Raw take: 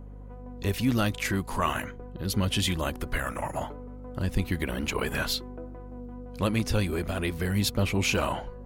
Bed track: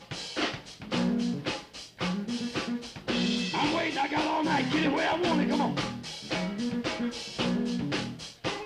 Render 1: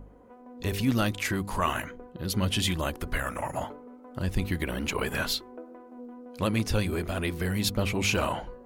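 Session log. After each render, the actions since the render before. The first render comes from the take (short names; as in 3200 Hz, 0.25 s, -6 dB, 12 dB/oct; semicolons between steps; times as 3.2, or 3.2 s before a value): de-hum 50 Hz, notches 10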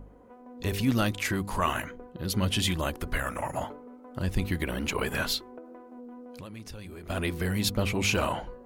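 5.58–7.1 compressor, threshold -40 dBFS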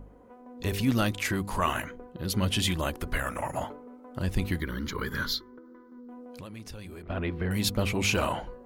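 4.6–6.09 fixed phaser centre 2600 Hz, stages 6; 7.02–7.51 air absorption 370 m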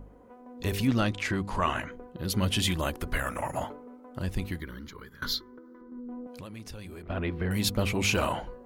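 0.87–1.92 air absorption 71 m; 3.9–5.22 fade out linear, to -23 dB; 5.81–6.27 tilt -3 dB/oct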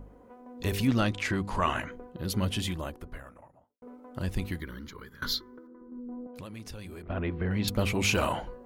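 1.92–3.82 studio fade out; 5.67–6.36 Bessel low-pass 980 Hz; 7.02–7.68 air absorption 220 m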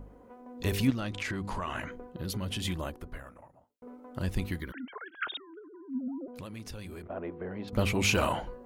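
0.9–2.65 compressor, threshold -30 dBFS; 4.72–6.28 sine-wave speech; 7.07–7.73 band-pass 600 Hz, Q 1.1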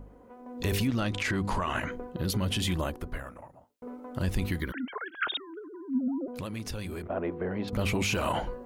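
AGC gain up to 6 dB; limiter -19.5 dBFS, peak gain reduction 11 dB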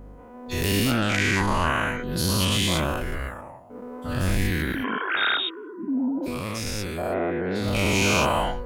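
spectral dilation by 0.24 s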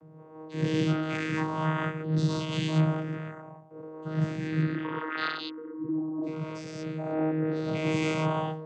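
vocoder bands 16, saw 157 Hz; noise-modulated level, depth 60%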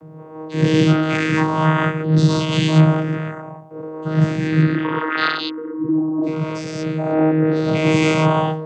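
gain +12 dB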